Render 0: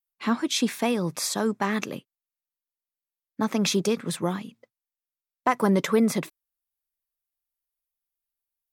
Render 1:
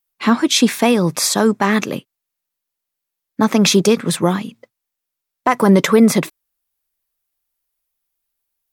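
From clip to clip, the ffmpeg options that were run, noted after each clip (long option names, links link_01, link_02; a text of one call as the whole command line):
ffmpeg -i in.wav -af "alimiter=level_in=12dB:limit=-1dB:release=50:level=0:latency=1,volume=-1dB" out.wav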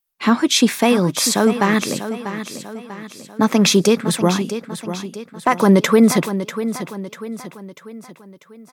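ffmpeg -i in.wav -af "aecho=1:1:643|1286|1929|2572|3215:0.282|0.132|0.0623|0.0293|0.0138,volume=-1dB" out.wav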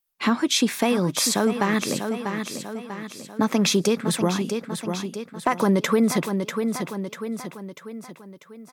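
ffmpeg -i in.wav -af "acompressor=threshold=-20dB:ratio=2,volume=-1dB" out.wav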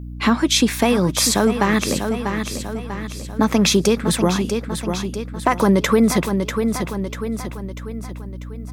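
ffmpeg -i in.wav -af "aeval=exprs='val(0)+0.0178*(sin(2*PI*60*n/s)+sin(2*PI*2*60*n/s)/2+sin(2*PI*3*60*n/s)/3+sin(2*PI*4*60*n/s)/4+sin(2*PI*5*60*n/s)/5)':channel_layout=same,volume=4.5dB" out.wav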